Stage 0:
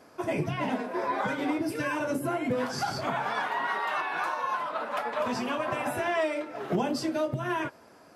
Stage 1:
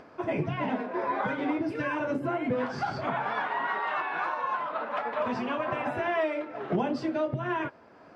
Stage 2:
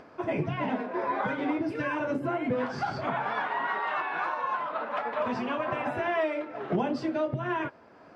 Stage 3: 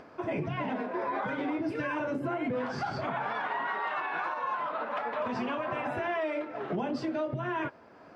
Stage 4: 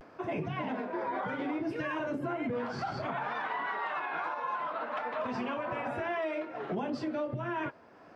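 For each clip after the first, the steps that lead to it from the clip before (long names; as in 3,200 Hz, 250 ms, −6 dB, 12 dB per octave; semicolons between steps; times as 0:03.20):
low-pass filter 2,900 Hz 12 dB per octave; upward compression, threshold −46 dBFS
no processing that can be heard
brickwall limiter −24 dBFS, peak gain reduction 7 dB
pitch vibrato 0.65 Hz 64 cents; level −2 dB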